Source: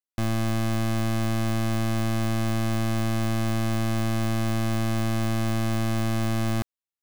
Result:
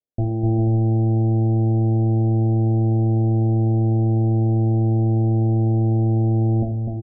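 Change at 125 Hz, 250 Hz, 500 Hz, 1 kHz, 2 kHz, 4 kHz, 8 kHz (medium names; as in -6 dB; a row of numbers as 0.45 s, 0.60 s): +10.0 dB, +5.0 dB, +5.5 dB, 0.0 dB, under -40 dB, under -40 dB, under -40 dB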